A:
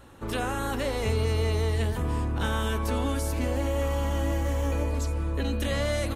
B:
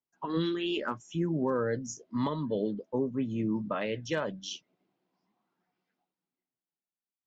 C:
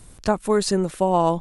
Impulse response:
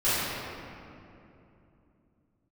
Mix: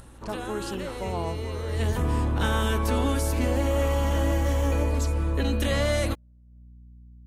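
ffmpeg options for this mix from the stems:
-filter_complex "[0:a]acontrast=56,volume=-3dB,afade=type=in:start_time=1.66:duration=0.25:silence=0.316228[link_01];[1:a]highpass=330,aeval=exprs='val(0)+0.00501*(sin(2*PI*60*n/s)+sin(2*PI*2*60*n/s)/2+sin(2*PI*3*60*n/s)/3+sin(2*PI*4*60*n/s)/4+sin(2*PI*5*60*n/s)/5)':channel_layout=same,volume=-11.5dB,asplit=2[link_02][link_03];[link_03]volume=-17dB[link_04];[2:a]volume=-14dB[link_05];[3:a]atrim=start_sample=2205[link_06];[link_04][link_06]afir=irnorm=-1:irlink=0[link_07];[link_01][link_02][link_05][link_07]amix=inputs=4:normalize=0,acompressor=mode=upward:threshold=-41dB:ratio=2.5"

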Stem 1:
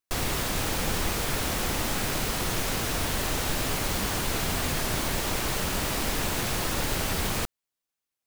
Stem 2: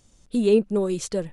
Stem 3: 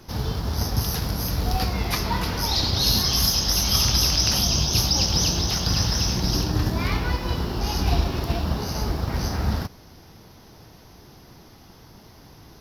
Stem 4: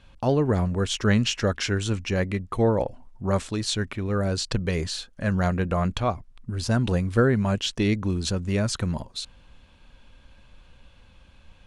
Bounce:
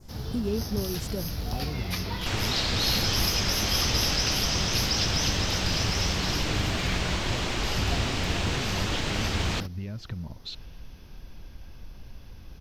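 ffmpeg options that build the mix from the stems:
ffmpeg -i stem1.wav -i stem2.wav -i stem3.wav -i stem4.wav -filter_complex "[0:a]lowpass=frequency=6900:width=0.5412,lowpass=frequency=6900:width=1.3066,adelay=2150,volume=-2.5dB[link_01];[1:a]volume=0.5dB[link_02];[2:a]equalizer=frequency=990:width_type=o:width=0.77:gain=-4.5,volume=-8dB[link_03];[3:a]lowpass=frequency=5300:width=0.5412,lowpass=frequency=5300:width=1.3066,acompressor=threshold=-32dB:ratio=6,adelay=1300,volume=-1dB[link_04];[link_02][link_04]amix=inputs=2:normalize=0,bass=frequency=250:gain=10,treble=frequency=4000:gain=-3,acompressor=threshold=-35dB:ratio=2.5,volume=0dB[link_05];[link_01][link_03][link_05]amix=inputs=3:normalize=0,adynamicequalizer=threshold=0.00562:dfrequency=3000:dqfactor=1.2:tfrequency=3000:tqfactor=1.2:attack=5:release=100:ratio=0.375:range=2.5:mode=boostabove:tftype=bell" out.wav

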